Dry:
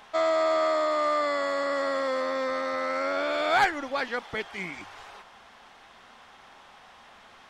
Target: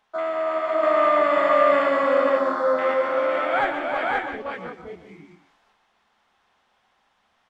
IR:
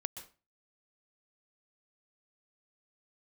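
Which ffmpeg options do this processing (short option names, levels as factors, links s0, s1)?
-filter_complex "[0:a]afwtdn=0.0316,asettb=1/sr,asplit=3[s0][s1][s2];[s0]atrim=end=0.834[s3];[s1]atrim=start=0.83:end=2.94,asetpts=PTS-STARTPTS,afade=t=in:d=0.004:c=qsin,afade=t=out:st=2.106:d=0.004:c=qsin,acontrast=68[s4];[s2]atrim=start=2.936[s5];[s3][s4]acrossfade=d=0.004:c1=hsin:c2=qsin[s6];[s6][s5]acrossfade=d=0.004:c1=qsin:c2=hsin,aecho=1:1:328|509|534:0.447|0.596|0.596[s7];[1:a]atrim=start_sample=2205[s8];[s7][s8]afir=irnorm=-1:irlink=0"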